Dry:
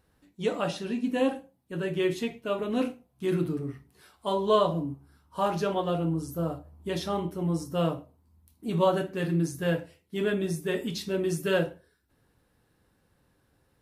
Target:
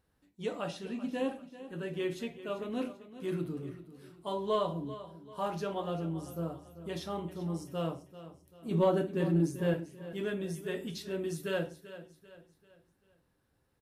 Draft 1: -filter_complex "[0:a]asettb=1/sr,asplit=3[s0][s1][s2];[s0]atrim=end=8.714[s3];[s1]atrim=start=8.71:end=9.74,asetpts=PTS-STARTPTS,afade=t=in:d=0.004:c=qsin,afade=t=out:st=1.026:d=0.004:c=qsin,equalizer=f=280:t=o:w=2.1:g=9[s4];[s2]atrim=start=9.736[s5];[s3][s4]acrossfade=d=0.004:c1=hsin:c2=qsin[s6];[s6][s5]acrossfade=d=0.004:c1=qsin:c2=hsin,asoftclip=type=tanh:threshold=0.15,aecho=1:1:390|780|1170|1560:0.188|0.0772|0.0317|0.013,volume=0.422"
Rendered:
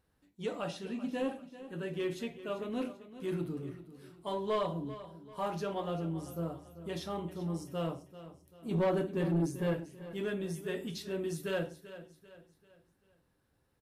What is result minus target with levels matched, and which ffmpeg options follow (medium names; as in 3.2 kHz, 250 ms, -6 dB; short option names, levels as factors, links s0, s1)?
saturation: distortion +14 dB
-filter_complex "[0:a]asettb=1/sr,asplit=3[s0][s1][s2];[s0]atrim=end=8.714[s3];[s1]atrim=start=8.71:end=9.74,asetpts=PTS-STARTPTS,afade=t=in:d=0.004:c=qsin,afade=t=out:st=1.026:d=0.004:c=qsin,equalizer=f=280:t=o:w=2.1:g=9[s4];[s2]atrim=start=9.736[s5];[s3][s4]acrossfade=d=0.004:c1=hsin:c2=qsin[s6];[s6][s5]acrossfade=d=0.004:c1=qsin:c2=hsin,asoftclip=type=tanh:threshold=0.447,aecho=1:1:390|780|1170|1560:0.188|0.0772|0.0317|0.013,volume=0.422"